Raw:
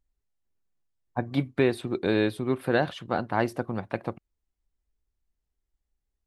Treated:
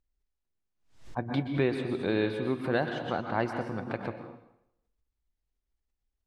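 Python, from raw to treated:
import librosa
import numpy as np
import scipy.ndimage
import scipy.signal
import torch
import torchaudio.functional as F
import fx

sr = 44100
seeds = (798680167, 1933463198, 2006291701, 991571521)

y = scipy.signal.sosfilt(scipy.signal.butter(2, 6400.0, 'lowpass', fs=sr, output='sos'), x)
y = fx.rev_plate(y, sr, seeds[0], rt60_s=0.78, hf_ratio=0.95, predelay_ms=110, drr_db=6.0)
y = fx.pre_swell(y, sr, db_per_s=120.0)
y = y * librosa.db_to_amplitude(-4.5)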